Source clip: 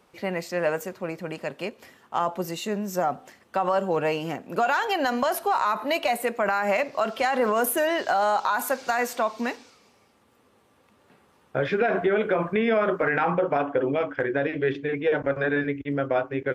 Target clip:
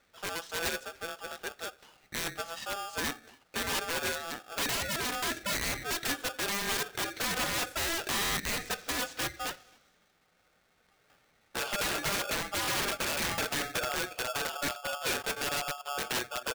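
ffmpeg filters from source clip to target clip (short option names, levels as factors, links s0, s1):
-filter_complex "[0:a]lowpass=f=6300:w=0.5412,lowpass=f=6300:w=1.3066,lowshelf=f=350:g=-3.5,asplit=2[s0][s1];[s1]adelay=268.2,volume=0.0355,highshelf=f=4000:g=-6.04[s2];[s0][s2]amix=inputs=2:normalize=0,aeval=exprs='(mod(9.44*val(0)+1,2)-1)/9.44':c=same,aeval=exprs='val(0)*sgn(sin(2*PI*1000*n/s))':c=same,volume=0.473"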